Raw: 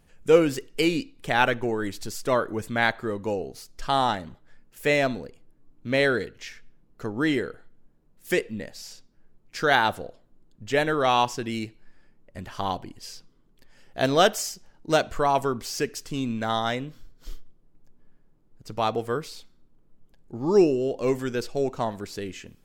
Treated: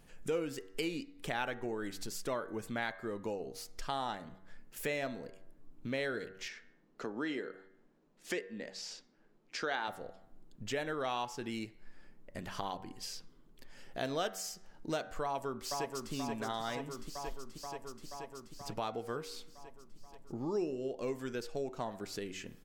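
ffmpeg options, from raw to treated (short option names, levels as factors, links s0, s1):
-filter_complex "[0:a]asettb=1/sr,asplit=3[s0][s1][s2];[s0]atrim=end=6.484[s3];[s1]atrim=start=6.48:end=9.88,asetpts=PTS-STARTPTS,afade=t=in:d=0.004:c=qsin,afade=t=out:st=3.396:d=0.004:c=qsin,acrossover=split=180 7700:gain=0.126 1 0.0794[s4][s5][s6];[s4][s5][s6]amix=inputs=3:normalize=0[s7];[s2]atrim=start=9.876[s8];[s3][s7]acrossfade=d=0.004:c1=hsin:c2=qsin[s9];[s9][s8]acrossfade=d=0.004:c1=qsin:c2=hsin,asplit=2[s10][s11];[s11]afade=t=in:st=15.23:d=0.01,afade=t=out:st=16.13:d=0.01,aecho=0:1:480|960|1440|1920|2400|2880|3360|3840|4320|4800:0.530884|0.345075|0.224299|0.145794|0.0947662|0.061598|0.0400387|0.0260252|0.0169164|0.0109956[s12];[s10][s12]amix=inputs=2:normalize=0,equalizer=f=72:t=o:w=1:g=-10,bandreject=f=95.05:t=h:w=4,bandreject=f=190.1:t=h:w=4,bandreject=f=285.15:t=h:w=4,bandreject=f=380.2:t=h:w=4,bandreject=f=475.25:t=h:w=4,bandreject=f=570.3:t=h:w=4,bandreject=f=665.35:t=h:w=4,bandreject=f=760.4:t=h:w=4,bandreject=f=855.45:t=h:w=4,bandreject=f=950.5:t=h:w=4,bandreject=f=1045.55:t=h:w=4,bandreject=f=1140.6:t=h:w=4,bandreject=f=1235.65:t=h:w=4,bandreject=f=1330.7:t=h:w=4,bandreject=f=1425.75:t=h:w=4,bandreject=f=1520.8:t=h:w=4,bandreject=f=1615.85:t=h:w=4,bandreject=f=1710.9:t=h:w=4,bandreject=f=1805.95:t=h:w=4,bandreject=f=1901:t=h:w=4,bandreject=f=1996.05:t=h:w=4,bandreject=f=2091.1:t=h:w=4,bandreject=f=2186.15:t=h:w=4,acompressor=threshold=0.00708:ratio=2.5,volume=1.19"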